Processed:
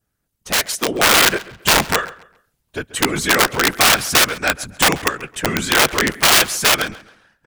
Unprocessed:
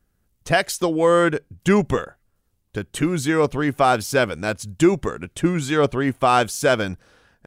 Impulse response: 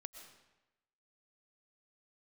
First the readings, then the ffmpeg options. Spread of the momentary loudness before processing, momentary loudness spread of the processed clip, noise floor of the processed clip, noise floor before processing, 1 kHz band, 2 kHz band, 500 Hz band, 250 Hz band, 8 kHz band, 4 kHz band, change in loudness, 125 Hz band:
11 LU, 11 LU, -73 dBFS, -69 dBFS, +2.5 dB, +9.0 dB, -3.5 dB, -4.0 dB, +14.0 dB, +15.0 dB, +5.0 dB, -4.0 dB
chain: -filter_complex "[0:a]afftfilt=real='hypot(re,im)*cos(2*PI*random(0))':imag='hypot(re,im)*sin(2*PI*random(1))':win_size=512:overlap=0.75,adynamicequalizer=threshold=0.01:dfrequency=1800:dqfactor=1:tfrequency=1800:tqfactor=1:attack=5:release=100:ratio=0.375:range=2.5:mode=boostabove:tftype=bell,aeval=exprs='(mod(7.08*val(0)+1,2)-1)/7.08':c=same,lowshelf=f=460:g=-9,dynaudnorm=f=120:g=13:m=2,asplit=2[s0][s1];[s1]adelay=135,lowpass=f=4900:p=1,volume=0.119,asplit=2[s2][s3];[s3]adelay=135,lowpass=f=4900:p=1,volume=0.32,asplit=2[s4][s5];[s5]adelay=135,lowpass=f=4900:p=1,volume=0.32[s6];[s2][s4][s6]amix=inputs=3:normalize=0[s7];[s0][s7]amix=inputs=2:normalize=0,volume=2"

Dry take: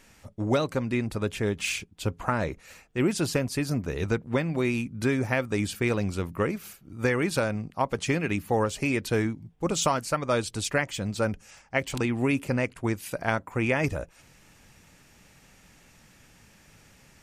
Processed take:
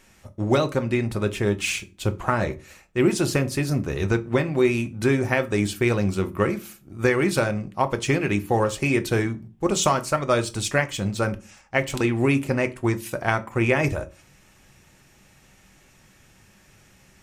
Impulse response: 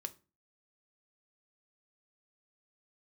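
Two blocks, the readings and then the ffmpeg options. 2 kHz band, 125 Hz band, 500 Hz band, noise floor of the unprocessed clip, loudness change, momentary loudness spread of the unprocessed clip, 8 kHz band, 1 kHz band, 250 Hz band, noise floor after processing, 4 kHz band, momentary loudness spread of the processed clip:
+4.0 dB, +5.0 dB, +5.0 dB, -57 dBFS, +4.5 dB, 6 LU, +3.5 dB, +4.5 dB, +4.0 dB, -56 dBFS, +3.5 dB, 6 LU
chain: -filter_complex "[0:a]bandreject=f=4700:w=29,asplit=2[s0][s1];[s1]aeval=exprs='sgn(val(0))*max(abs(val(0))-0.00794,0)':c=same,volume=0.501[s2];[s0][s2]amix=inputs=2:normalize=0[s3];[1:a]atrim=start_sample=2205[s4];[s3][s4]afir=irnorm=-1:irlink=0,volume=1.5"

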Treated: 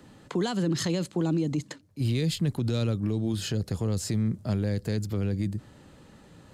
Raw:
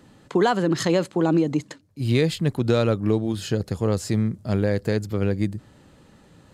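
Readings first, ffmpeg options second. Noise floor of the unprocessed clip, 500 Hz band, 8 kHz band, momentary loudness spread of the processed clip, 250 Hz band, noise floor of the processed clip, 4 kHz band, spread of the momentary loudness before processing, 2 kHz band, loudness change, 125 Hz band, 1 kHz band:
-54 dBFS, -10.5 dB, -1.0 dB, 5 LU, -5.5 dB, -54 dBFS, -3.0 dB, 6 LU, -9.5 dB, -5.5 dB, -3.0 dB, -12.5 dB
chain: -filter_complex "[0:a]acrossover=split=270|3000[s0][s1][s2];[s1]acompressor=threshold=0.0251:ratio=6[s3];[s0][s3][s2]amix=inputs=3:normalize=0,alimiter=limit=0.112:level=0:latency=1:release=17"

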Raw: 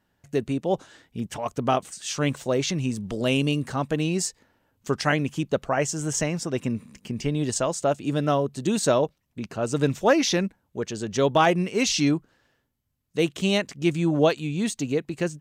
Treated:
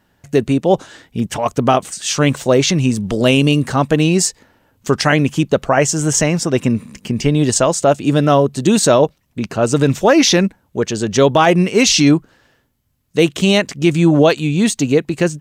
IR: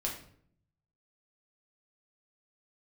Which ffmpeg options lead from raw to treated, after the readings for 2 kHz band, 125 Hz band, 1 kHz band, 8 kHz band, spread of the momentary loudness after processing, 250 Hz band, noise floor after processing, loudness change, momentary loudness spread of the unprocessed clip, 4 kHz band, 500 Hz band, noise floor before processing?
+9.5 dB, +11.0 dB, +9.0 dB, +11.5 dB, 8 LU, +11.0 dB, -61 dBFS, +10.5 dB, 10 LU, +11.0 dB, +10.0 dB, -73 dBFS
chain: -af "alimiter=level_in=4.22:limit=0.891:release=50:level=0:latency=1,volume=0.891"

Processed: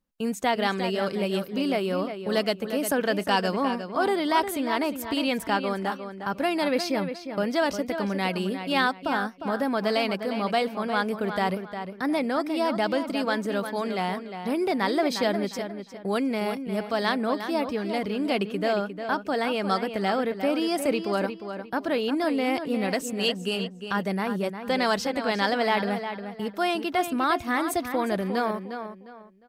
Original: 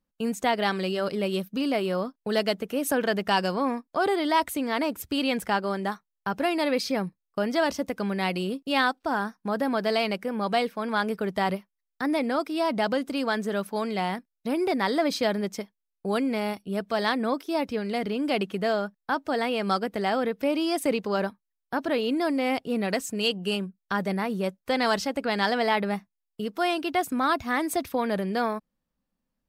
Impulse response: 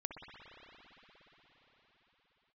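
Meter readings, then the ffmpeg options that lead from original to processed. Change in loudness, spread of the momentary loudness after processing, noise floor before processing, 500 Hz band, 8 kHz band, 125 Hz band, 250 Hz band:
+0.5 dB, 6 LU, -83 dBFS, +0.5 dB, 0.0 dB, +0.5 dB, +0.5 dB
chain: -filter_complex "[0:a]asplit=2[s0][s1];[s1]adelay=355,lowpass=f=4000:p=1,volume=0.376,asplit=2[s2][s3];[s3]adelay=355,lowpass=f=4000:p=1,volume=0.29,asplit=2[s4][s5];[s5]adelay=355,lowpass=f=4000:p=1,volume=0.29[s6];[s0][s2][s4][s6]amix=inputs=4:normalize=0"

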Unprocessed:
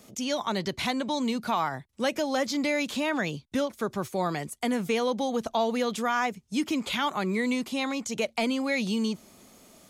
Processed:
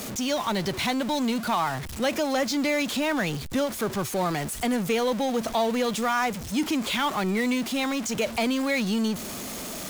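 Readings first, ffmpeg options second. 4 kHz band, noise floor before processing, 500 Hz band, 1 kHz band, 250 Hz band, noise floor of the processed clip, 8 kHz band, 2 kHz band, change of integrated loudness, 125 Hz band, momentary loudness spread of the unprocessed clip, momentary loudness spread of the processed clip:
+3.0 dB, -58 dBFS, +2.0 dB, +2.0 dB, +2.5 dB, -36 dBFS, +6.0 dB, +2.5 dB, +2.5 dB, +4.5 dB, 4 LU, 3 LU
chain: -af "aeval=exprs='val(0)+0.5*0.0316*sgn(val(0))':c=same"

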